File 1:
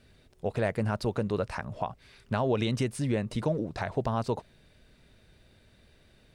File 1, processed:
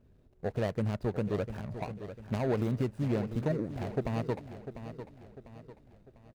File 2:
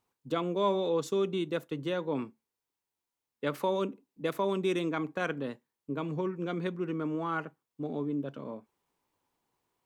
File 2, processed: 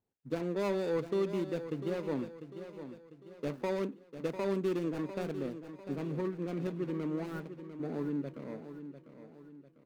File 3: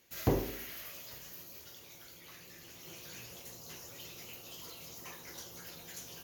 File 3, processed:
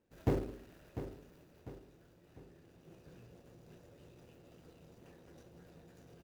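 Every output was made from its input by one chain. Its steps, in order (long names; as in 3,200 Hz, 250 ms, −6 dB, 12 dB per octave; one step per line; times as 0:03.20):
running median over 41 samples
repeating echo 698 ms, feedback 43%, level −11 dB
level −1.5 dB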